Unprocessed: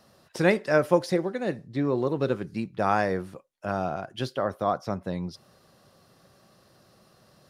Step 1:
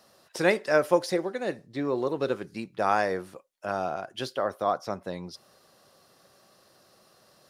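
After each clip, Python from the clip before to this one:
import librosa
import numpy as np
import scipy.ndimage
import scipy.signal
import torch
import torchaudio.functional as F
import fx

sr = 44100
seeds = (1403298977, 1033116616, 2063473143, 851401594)

y = fx.bass_treble(x, sr, bass_db=-10, treble_db=3)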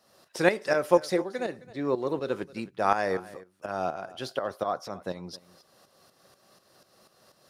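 y = fx.tremolo_shape(x, sr, shape='saw_up', hz=4.1, depth_pct=70)
y = y + 10.0 ** (-19.0 / 20.0) * np.pad(y, (int(265 * sr / 1000.0), 0))[:len(y)]
y = F.gain(torch.from_numpy(y), 2.5).numpy()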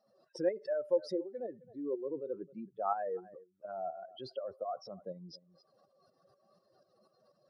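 y = fx.spec_expand(x, sr, power=2.5)
y = F.gain(torch.from_numpy(y), -8.5).numpy()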